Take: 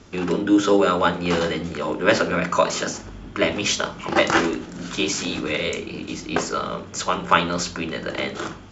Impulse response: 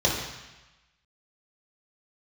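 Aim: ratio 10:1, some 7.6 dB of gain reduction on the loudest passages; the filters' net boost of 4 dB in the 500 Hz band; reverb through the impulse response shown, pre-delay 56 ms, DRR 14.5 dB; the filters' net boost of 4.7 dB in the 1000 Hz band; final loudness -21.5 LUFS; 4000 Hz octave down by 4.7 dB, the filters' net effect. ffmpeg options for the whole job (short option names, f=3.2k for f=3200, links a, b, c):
-filter_complex "[0:a]equalizer=f=500:t=o:g=3.5,equalizer=f=1k:t=o:g=5.5,equalizer=f=4k:t=o:g=-7,acompressor=threshold=-15dB:ratio=10,asplit=2[a][b];[1:a]atrim=start_sample=2205,adelay=56[c];[b][c]afir=irnorm=-1:irlink=0,volume=-29dB[d];[a][d]amix=inputs=2:normalize=0,volume=1.5dB"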